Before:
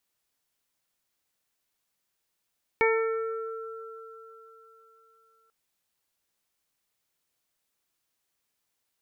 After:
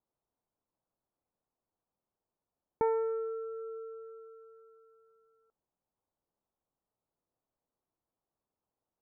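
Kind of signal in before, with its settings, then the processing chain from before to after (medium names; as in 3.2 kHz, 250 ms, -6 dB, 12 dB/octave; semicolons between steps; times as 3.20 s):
additive tone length 2.69 s, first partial 449 Hz, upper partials -4/-10/-8/-2 dB, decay 3.19 s, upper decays 0.68/4.76/1.02/0.80 s, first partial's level -21 dB
low-pass 1 kHz 24 dB/octave; dynamic bell 380 Hz, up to -4 dB, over -40 dBFS, Q 0.95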